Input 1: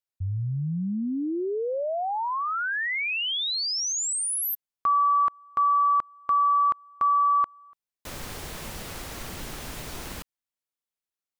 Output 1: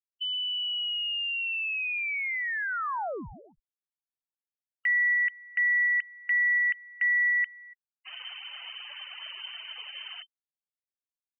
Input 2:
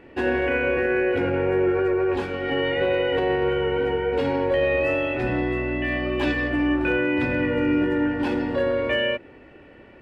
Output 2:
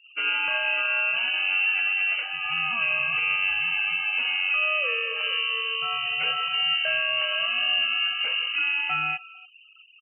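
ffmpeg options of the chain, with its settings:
-filter_complex "[0:a]asplit=2[a][b];[b]adelay=290,highpass=300,lowpass=3.4k,asoftclip=type=hard:threshold=-20.5dB,volume=-19dB[c];[a][c]amix=inputs=2:normalize=0,lowpass=f=2.6k:t=q:w=0.5098,lowpass=f=2.6k:t=q:w=0.6013,lowpass=f=2.6k:t=q:w=0.9,lowpass=f=2.6k:t=q:w=2.563,afreqshift=-3100,afftfilt=real='re*gte(hypot(re,im),0.0141)':imag='im*gte(hypot(re,im),0.0141)':win_size=1024:overlap=0.75,volume=-3dB"

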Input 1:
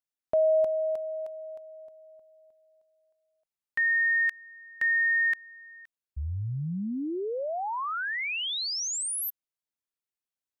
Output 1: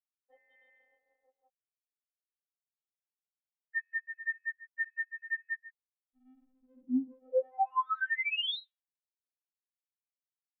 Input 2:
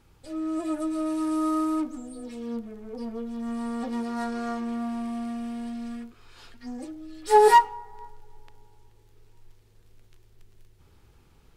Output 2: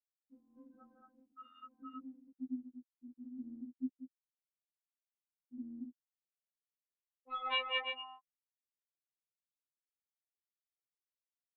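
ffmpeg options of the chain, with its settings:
-af "aecho=1:1:190|332.5|439.4|519.5|579.6:0.631|0.398|0.251|0.158|0.1,afftfilt=real='re*gte(hypot(re,im),0.282)':imag='im*gte(hypot(re,im),0.282)':win_size=1024:overlap=0.75,aresample=8000,asoftclip=type=tanh:threshold=-16dB,aresample=44100,adynamicequalizer=threshold=0.0224:dfrequency=1100:dqfactor=1.8:tfrequency=1100:tqfactor=1.8:attack=5:release=100:ratio=0.438:range=1.5:mode=cutabove:tftype=bell,highpass=f=390:p=1,alimiter=limit=-22.5dB:level=0:latency=1:release=229,afftfilt=real='re*3.46*eq(mod(b,12),0)':imag='im*3.46*eq(mod(b,12),0)':win_size=2048:overlap=0.75,volume=5dB"

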